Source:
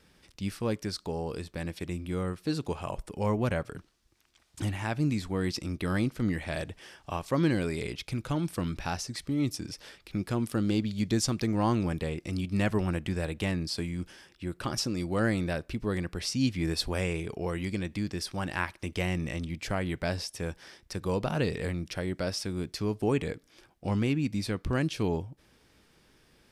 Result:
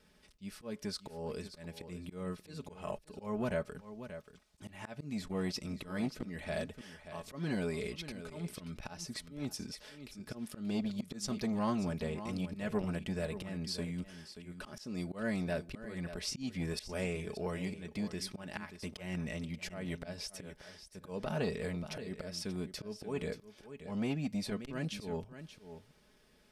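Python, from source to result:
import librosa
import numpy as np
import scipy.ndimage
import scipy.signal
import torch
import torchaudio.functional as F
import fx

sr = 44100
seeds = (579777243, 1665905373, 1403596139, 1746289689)

p1 = fx.peak_eq(x, sr, hz=570.0, db=7.0, octaves=0.2)
p2 = p1 + 0.58 * np.pad(p1, (int(4.7 * sr / 1000.0), 0))[:len(p1)]
p3 = fx.auto_swell(p2, sr, attack_ms=209.0)
p4 = p3 + fx.echo_single(p3, sr, ms=582, db=-12.5, dry=0)
p5 = fx.transformer_sat(p4, sr, knee_hz=400.0)
y = F.gain(torch.from_numpy(p5), -6.0).numpy()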